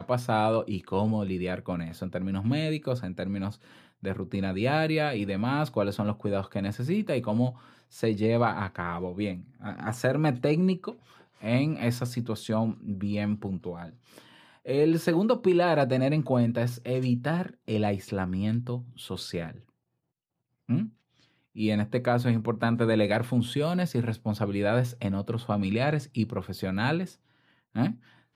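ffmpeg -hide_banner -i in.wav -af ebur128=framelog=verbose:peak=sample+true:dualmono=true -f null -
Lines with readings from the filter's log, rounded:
Integrated loudness:
  I:         -25.3 LUFS
  Threshold: -35.8 LUFS
Loudness range:
  LRA:         5.8 LU
  Threshold: -45.8 LUFS
  LRA low:   -29.0 LUFS
  LRA high:  -23.2 LUFS
Sample peak:
  Peak:      -10.9 dBFS
True peak:
  Peak:      -10.9 dBFS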